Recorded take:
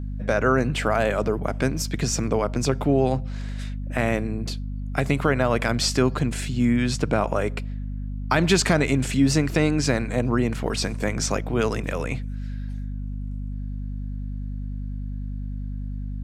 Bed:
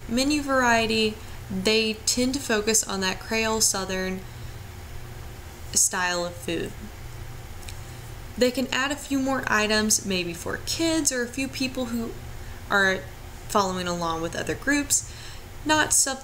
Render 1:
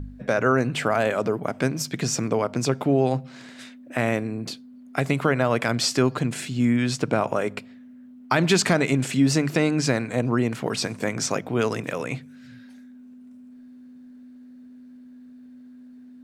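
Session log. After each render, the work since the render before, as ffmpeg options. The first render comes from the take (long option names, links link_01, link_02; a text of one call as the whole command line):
ffmpeg -i in.wav -af "bandreject=frequency=50:width_type=h:width=4,bandreject=frequency=100:width_type=h:width=4,bandreject=frequency=150:width_type=h:width=4,bandreject=frequency=200:width_type=h:width=4" out.wav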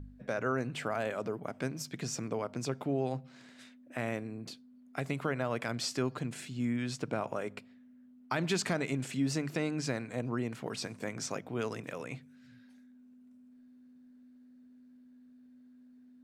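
ffmpeg -i in.wav -af "volume=-12dB" out.wav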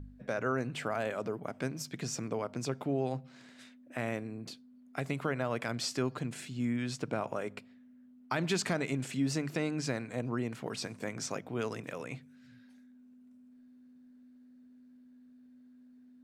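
ffmpeg -i in.wav -af anull out.wav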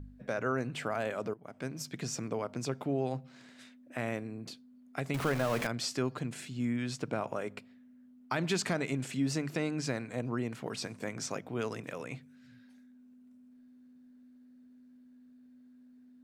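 ffmpeg -i in.wav -filter_complex "[0:a]asettb=1/sr,asplit=3[link_01][link_02][link_03];[link_01]atrim=end=5.144[link_04];[link_02]atrim=start=5.14:end=5.67,asetpts=PTS-STARTPTS,afade=type=in:duration=0.004:curve=qsin,afade=type=out:start_time=0.526:duration=0.004:curve=qsin,aeval=exprs='val(0)+0.5*0.0224*sgn(val(0))':channel_layout=same[link_05];[link_03]atrim=start=5.666[link_06];[link_04][link_05]acrossfade=duration=0.004:curve1=hsin:curve2=qsin[link_07];[link_07][link_06]acrossfade=duration=0.004:curve1=qsin:curve2=hsin,asplit=2[link_08][link_09];[link_08]atrim=end=1.34,asetpts=PTS-STARTPTS,afade=type=out:start_time=1.336:duration=0.004:curve=hsin:silence=0.133352[link_10];[link_09]atrim=start=1.34,asetpts=PTS-STARTPTS,afade=type=in:duration=0.49:silence=0.133352[link_11];[link_10][link_11]concat=n=2:v=0:a=1" out.wav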